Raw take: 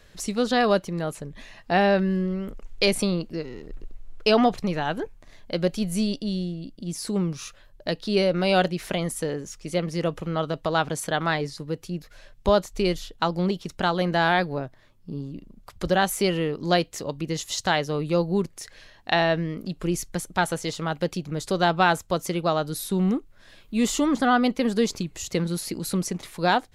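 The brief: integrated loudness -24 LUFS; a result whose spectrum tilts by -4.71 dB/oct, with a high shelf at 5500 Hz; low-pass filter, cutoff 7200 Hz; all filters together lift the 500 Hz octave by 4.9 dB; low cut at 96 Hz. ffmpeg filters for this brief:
-af "highpass=96,lowpass=7.2k,equalizer=f=500:t=o:g=6,highshelf=f=5.5k:g=8.5,volume=-1.5dB"

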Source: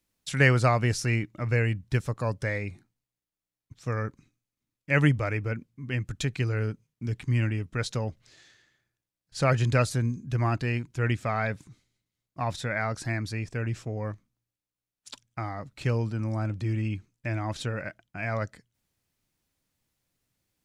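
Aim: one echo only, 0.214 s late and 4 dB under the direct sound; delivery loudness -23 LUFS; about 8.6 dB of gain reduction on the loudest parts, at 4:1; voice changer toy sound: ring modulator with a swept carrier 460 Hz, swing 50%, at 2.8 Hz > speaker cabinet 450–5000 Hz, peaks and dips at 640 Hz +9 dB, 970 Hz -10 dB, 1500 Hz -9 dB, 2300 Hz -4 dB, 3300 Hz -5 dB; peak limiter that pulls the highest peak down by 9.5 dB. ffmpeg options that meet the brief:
-af "acompressor=threshold=-26dB:ratio=4,alimiter=limit=-23dB:level=0:latency=1,aecho=1:1:214:0.631,aeval=exprs='val(0)*sin(2*PI*460*n/s+460*0.5/2.8*sin(2*PI*2.8*n/s))':c=same,highpass=450,equalizer=f=640:t=q:w=4:g=9,equalizer=f=970:t=q:w=4:g=-10,equalizer=f=1.5k:t=q:w=4:g=-9,equalizer=f=2.3k:t=q:w=4:g=-4,equalizer=f=3.3k:t=q:w=4:g=-5,lowpass=f=5k:w=0.5412,lowpass=f=5k:w=1.3066,volume=14dB"

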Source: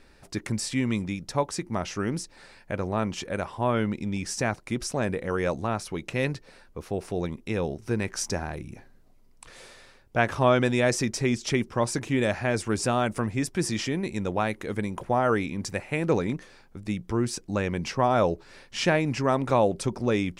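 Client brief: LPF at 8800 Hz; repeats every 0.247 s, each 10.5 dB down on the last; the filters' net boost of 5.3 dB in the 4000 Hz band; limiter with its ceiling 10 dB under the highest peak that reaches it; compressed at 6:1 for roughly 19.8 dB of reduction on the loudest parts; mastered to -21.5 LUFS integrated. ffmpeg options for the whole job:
-af "lowpass=8.8k,equalizer=f=4k:t=o:g=7.5,acompressor=threshold=-39dB:ratio=6,alimiter=level_in=7.5dB:limit=-24dB:level=0:latency=1,volume=-7.5dB,aecho=1:1:247|494|741:0.299|0.0896|0.0269,volume=21.5dB"

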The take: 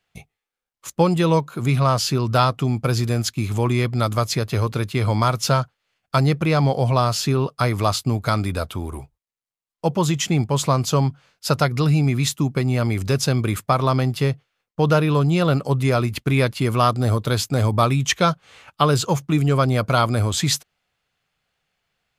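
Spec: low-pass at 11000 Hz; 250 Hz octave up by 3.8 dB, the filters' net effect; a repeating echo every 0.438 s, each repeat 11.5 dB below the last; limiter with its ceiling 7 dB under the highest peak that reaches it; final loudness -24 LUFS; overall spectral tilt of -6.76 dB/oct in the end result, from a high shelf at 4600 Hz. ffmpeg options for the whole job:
-af "lowpass=11k,equalizer=f=250:t=o:g=5.5,highshelf=f=4.6k:g=-7.5,alimiter=limit=-9.5dB:level=0:latency=1,aecho=1:1:438|876|1314:0.266|0.0718|0.0194,volume=-3.5dB"

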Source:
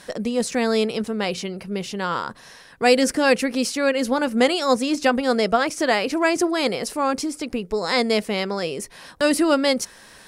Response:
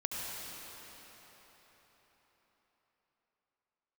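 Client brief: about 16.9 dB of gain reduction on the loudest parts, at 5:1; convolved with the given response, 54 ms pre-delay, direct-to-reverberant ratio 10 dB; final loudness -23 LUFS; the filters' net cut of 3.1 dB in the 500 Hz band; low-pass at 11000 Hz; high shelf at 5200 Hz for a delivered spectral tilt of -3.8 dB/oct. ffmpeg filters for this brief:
-filter_complex "[0:a]lowpass=11k,equalizer=f=500:t=o:g=-3.5,highshelf=f=5.2k:g=-3.5,acompressor=threshold=-34dB:ratio=5,asplit=2[a][b];[1:a]atrim=start_sample=2205,adelay=54[c];[b][c]afir=irnorm=-1:irlink=0,volume=-14dB[d];[a][d]amix=inputs=2:normalize=0,volume=13.5dB"

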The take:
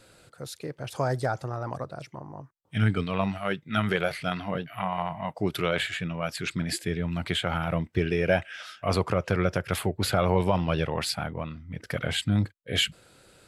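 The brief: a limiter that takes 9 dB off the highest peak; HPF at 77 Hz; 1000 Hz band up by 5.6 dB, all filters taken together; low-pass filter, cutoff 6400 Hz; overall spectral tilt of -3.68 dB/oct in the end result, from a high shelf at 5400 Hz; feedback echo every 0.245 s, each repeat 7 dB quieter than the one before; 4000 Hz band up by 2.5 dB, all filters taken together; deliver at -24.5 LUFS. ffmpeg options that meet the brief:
-af "highpass=77,lowpass=6.4k,equalizer=f=1k:t=o:g=7.5,equalizer=f=4k:t=o:g=6.5,highshelf=f=5.4k:g=-8.5,alimiter=limit=-16dB:level=0:latency=1,aecho=1:1:245|490|735|980|1225:0.447|0.201|0.0905|0.0407|0.0183,volume=4dB"

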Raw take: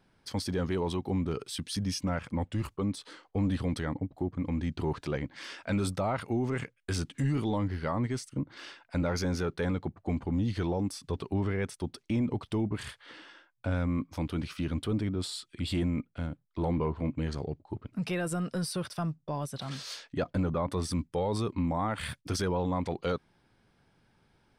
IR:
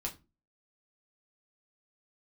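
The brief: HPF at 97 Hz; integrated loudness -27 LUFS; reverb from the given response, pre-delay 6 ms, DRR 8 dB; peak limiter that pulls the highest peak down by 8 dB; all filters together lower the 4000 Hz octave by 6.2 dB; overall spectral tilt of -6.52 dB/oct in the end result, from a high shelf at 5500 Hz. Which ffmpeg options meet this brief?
-filter_complex "[0:a]highpass=97,equalizer=f=4k:t=o:g=-5.5,highshelf=f=5.5k:g=-5.5,alimiter=level_in=2.5dB:limit=-24dB:level=0:latency=1,volume=-2.5dB,asplit=2[a][b];[1:a]atrim=start_sample=2205,adelay=6[c];[b][c]afir=irnorm=-1:irlink=0,volume=-8.5dB[d];[a][d]amix=inputs=2:normalize=0,volume=10dB"

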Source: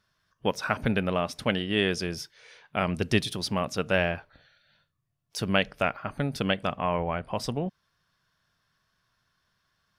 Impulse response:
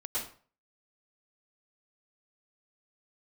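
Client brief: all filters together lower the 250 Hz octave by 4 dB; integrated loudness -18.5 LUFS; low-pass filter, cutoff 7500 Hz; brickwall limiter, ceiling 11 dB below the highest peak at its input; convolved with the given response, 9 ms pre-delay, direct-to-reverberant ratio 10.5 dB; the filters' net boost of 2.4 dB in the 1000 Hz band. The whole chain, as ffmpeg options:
-filter_complex "[0:a]lowpass=7.5k,equalizer=f=250:t=o:g=-6,equalizer=f=1k:t=o:g=3.5,alimiter=limit=-17dB:level=0:latency=1,asplit=2[a][b];[1:a]atrim=start_sample=2205,adelay=9[c];[b][c]afir=irnorm=-1:irlink=0,volume=-14.5dB[d];[a][d]amix=inputs=2:normalize=0,volume=12.5dB"

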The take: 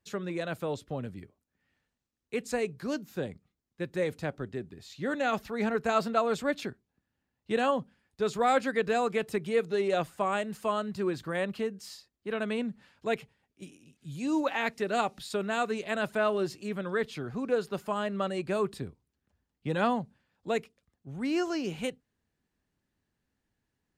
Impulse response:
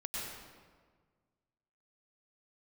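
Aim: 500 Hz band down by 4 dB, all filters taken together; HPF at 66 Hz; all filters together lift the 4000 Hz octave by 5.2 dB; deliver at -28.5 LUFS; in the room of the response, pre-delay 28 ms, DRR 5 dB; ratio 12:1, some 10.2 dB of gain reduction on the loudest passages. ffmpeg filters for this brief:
-filter_complex "[0:a]highpass=66,equalizer=f=500:t=o:g=-5,equalizer=f=4k:t=o:g=6.5,acompressor=threshold=-32dB:ratio=12,asplit=2[a][b];[1:a]atrim=start_sample=2205,adelay=28[c];[b][c]afir=irnorm=-1:irlink=0,volume=-7dB[d];[a][d]amix=inputs=2:normalize=0,volume=8.5dB"

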